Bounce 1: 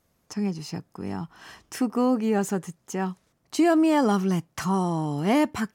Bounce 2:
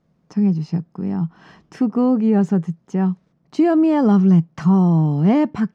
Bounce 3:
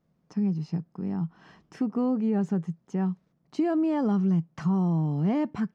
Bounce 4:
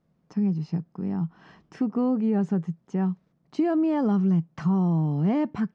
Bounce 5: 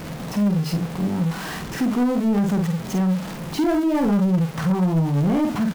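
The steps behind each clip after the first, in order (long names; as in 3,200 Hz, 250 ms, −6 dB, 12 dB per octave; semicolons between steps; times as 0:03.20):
drawn EQ curve 110 Hz 0 dB, 160 Hz +15 dB, 260 Hz +6 dB, 5,300 Hz −7 dB, 13,000 Hz −28 dB
downward compressor 2 to 1, threshold −16 dBFS, peak gain reduction 4 dB; level −7.5 dB
high-frequency loss of the air 57 metres; level +2 dB
converter with a step at zero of −32 dBFS; double-tracking delay 49 ms −3.5 dB; leveller curve on the samples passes 2; level −3 dB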